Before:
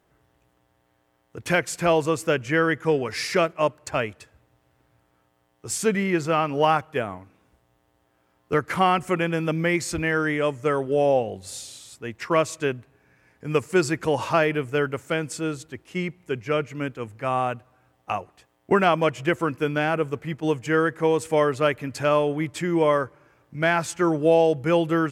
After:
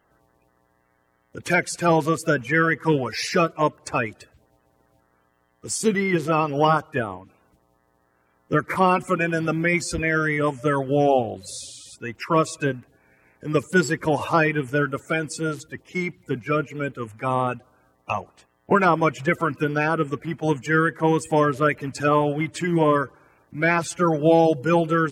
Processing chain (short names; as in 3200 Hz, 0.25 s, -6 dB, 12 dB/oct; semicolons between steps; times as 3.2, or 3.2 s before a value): bin magnitudes rounded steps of 30 dB; gain +2 dB